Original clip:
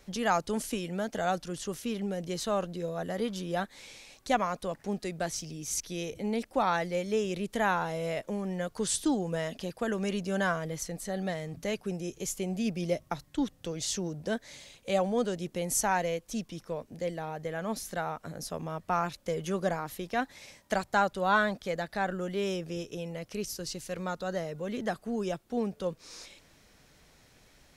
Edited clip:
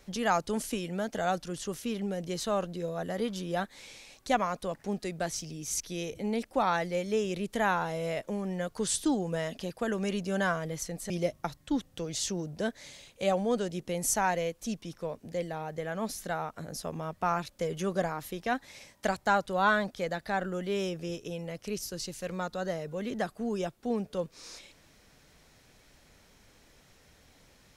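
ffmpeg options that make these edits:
-filter_complex "[0:a]asplit=2[a][b];[a]atrim=end=11.102[c];[b]atrim=start=12.768[d];[c][d]acrossfade=d=0.004:c1=hsin:c2=hsin"

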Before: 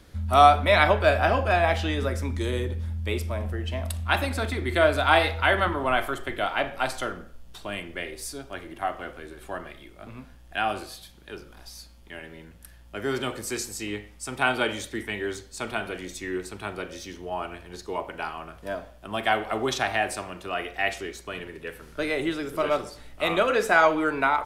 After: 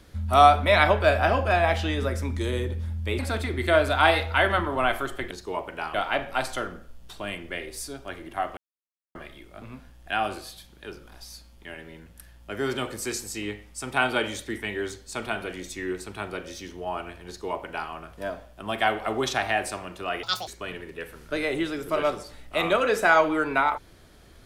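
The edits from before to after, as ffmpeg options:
-filter_complex "[0:a]asplit=8[a][b][c][d][e][f][g][h];[a]atrim=end=3.192[i];[b]atrim=start=4.268:end=6.392[j];[c]atrim=start=17.718:end=18.352[k];[d]atrim=start=6.388:end=9.02,asetpts=PTS-STARTPTS,afade=t=out:st=2.628:d=0.004:c=hsin[l];[e]atrim=start=9.02:end=9.6,asetpts=PTS-STARTPTS,volume=0[m];[f]atrim=start=9.6:end=20.684,asetpts=PTS-STARTPTS,afade=t=in:d=0.004:c=hsin[n];[g]atrim=start=20.68:end=21.14,asetpts=PTS-STARTPTS,asetrate=82908,aresample=44100,atrim=end_sample=10790,asetpts=PTS-STARTPTS[o];[h]atrim=start=21.136[p];[i][j]acrossfade=d=0.004:c1=hsin:c2=hsin[q];[q][k]acrossfade=d=0.004:c1=hsin:c2=hsin[r];[l][m][n]concat=n=3:v=0:a=1[s];[r][s]acrossfade=d=0.004:c1=hsin:c2=hsin[t];[t][o]acrossfade=d=0.004:c1=hsin:c2=hsin[u];[u][p]acrossfade=d=0.004:c1=hsin:c2=hsin"

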